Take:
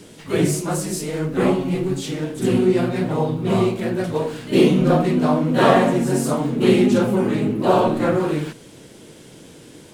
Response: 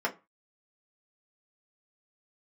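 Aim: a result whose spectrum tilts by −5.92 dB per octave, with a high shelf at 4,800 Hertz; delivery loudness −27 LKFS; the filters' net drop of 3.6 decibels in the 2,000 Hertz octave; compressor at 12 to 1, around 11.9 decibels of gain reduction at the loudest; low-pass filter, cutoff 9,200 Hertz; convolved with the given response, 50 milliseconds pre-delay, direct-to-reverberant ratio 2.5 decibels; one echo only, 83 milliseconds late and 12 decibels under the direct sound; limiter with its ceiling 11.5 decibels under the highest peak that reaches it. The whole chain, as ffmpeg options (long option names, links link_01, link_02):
-filter_complex "[0:a]lowpass=9200,equalizer=frequency=2000:width_type=o:gain=-5.5,highshelf=frequency=4800:gain=4.5,acompressor=threshold=-21dB:ratio=12,alimiter=limit=-24dB:level=0:latency=1,aecho=1:1:83:0.251,asplit=2[link_01][link_02];[1:a]atrim=start_sample=2205,adelay=50[link_03];[link_02][link_03]afir=irnorm=-1:irlink=0,volume=-11.5dB[link_04];[link_01][link_04]amix=inputs=2:normalize=0,volume=3dB"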